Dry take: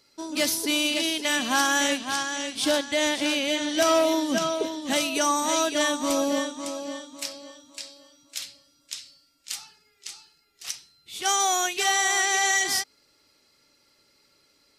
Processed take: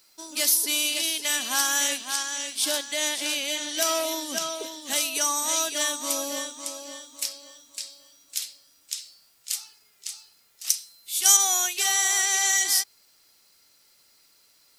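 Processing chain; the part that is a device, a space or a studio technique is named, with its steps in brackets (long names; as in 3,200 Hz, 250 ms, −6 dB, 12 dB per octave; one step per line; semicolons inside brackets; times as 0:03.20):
0:10.70–0:11.37: high-shelf EQ 4,900 Hz +10.5 dB
turntable without a phono preamp (RIAA equalisation recording; white noise bed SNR 37 dB)
level −6 dB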